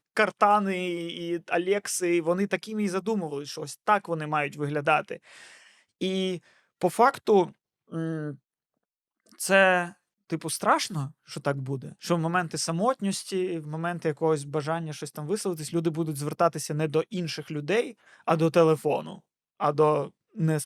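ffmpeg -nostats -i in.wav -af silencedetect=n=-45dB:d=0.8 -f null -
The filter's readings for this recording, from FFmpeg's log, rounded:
silence_start: 8.36
silence_end: 9.27 | silence_duration: 0.91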